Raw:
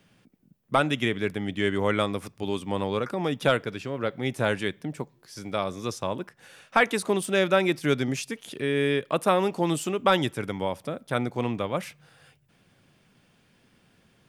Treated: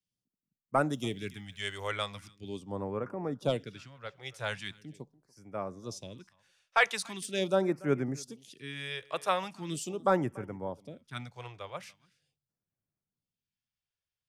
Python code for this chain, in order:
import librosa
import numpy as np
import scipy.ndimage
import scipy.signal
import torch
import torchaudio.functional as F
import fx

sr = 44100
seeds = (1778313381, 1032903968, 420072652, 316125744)

y = fx.high_shelf(x, sr, hz=8600.0, db=fx.steps((0.0, 6.5), (1.91, -7.5)))
y = y + 10.0 ** (-19.5 / 20.0) * np.pad(y, (int(289 * sr / 1000.0), 0))[:len(y)]
y = fx.phaser_stages(y, sr, stages=2, low_hz=230.0, high_hz=3900.0, hz=0.41, feedback_pct=5)
y = fx.peak_eq(y, sr, hz=5600.0, db=6.5, octaves=1.2)
y = fx.band_widen(y, sr, depth_pct=70)
y = y * librosa.db_to_amplitude(-7.5)